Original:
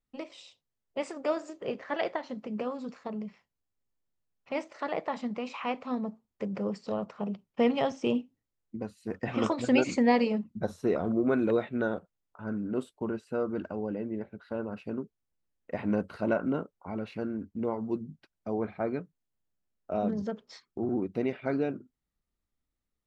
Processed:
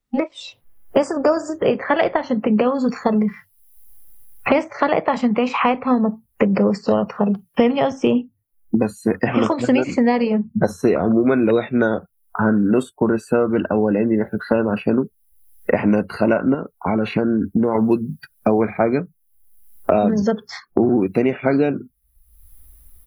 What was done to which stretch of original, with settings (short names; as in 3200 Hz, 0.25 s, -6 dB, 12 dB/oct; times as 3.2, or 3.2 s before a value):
0.98–1.53 spectral gain 1800–4600 Hz -11 dB
16.54–17.75 compressor 3:1, threshold -36 dBFS
whole clip: AGC gain up to 16 dB; spectral noise reduction 22 dB; three-band squash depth 100%; gain -1 dB